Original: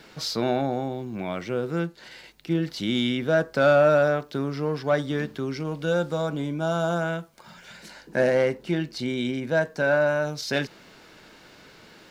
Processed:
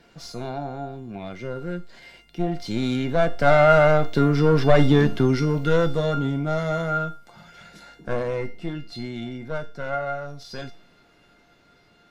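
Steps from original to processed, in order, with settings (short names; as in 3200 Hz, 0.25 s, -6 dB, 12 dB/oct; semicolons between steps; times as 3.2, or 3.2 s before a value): one diode to ground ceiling -26 dBFS; Doppler pass-by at 4.78, 15 m/s, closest 9.4 m; tilt -1.5 dB/oct; resonator 700 Hz, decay 0.45 s, mix 90%; maximiser +32 dB; gain -2.5 dB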